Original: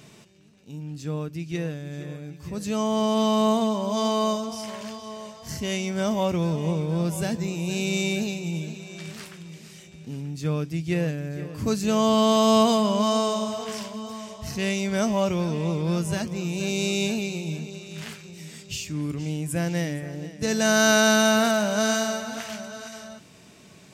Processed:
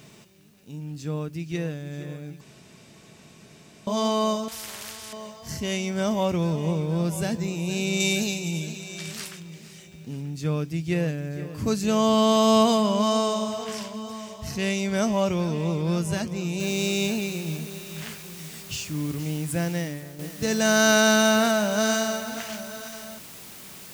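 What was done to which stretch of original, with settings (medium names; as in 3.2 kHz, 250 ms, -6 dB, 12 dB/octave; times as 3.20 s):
2.41–3.87 s: room tone
4.48–5.13 s: spectrum-flattening compressor 4:1
8.00–9.40 s: treble shelf 3 kHz +9.5 dB
16.60 s: noise floor step -66 dB -44 dB
19.60–20.19 s: fade out, to -9 dB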